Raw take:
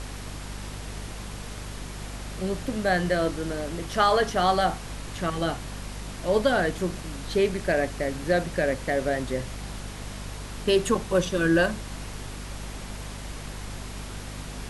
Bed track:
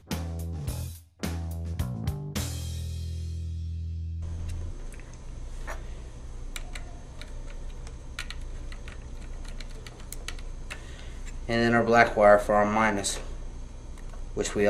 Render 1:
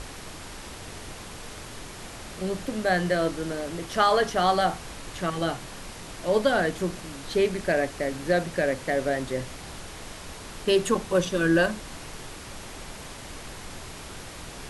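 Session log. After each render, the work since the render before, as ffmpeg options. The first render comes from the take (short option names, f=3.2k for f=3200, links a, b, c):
-af "bandreject=f=50:t=h:w=6,bandreject=f=100:t=h:w=6,bandreject=f=150:t=h:w=6,bandreject=f=200:t=h:w=6,bandreject=f=250:t=h:w=6"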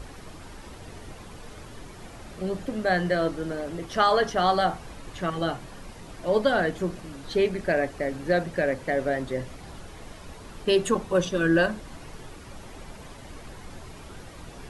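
-af "afftdn=nr=9:nf=-41"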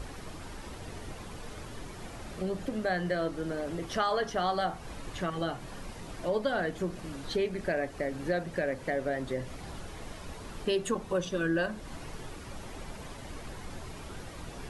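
-af "acompressor=threshold=-32dB:ratio=2"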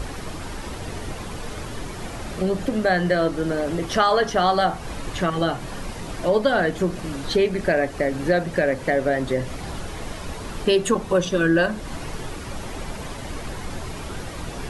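-af "volume=10.5dB"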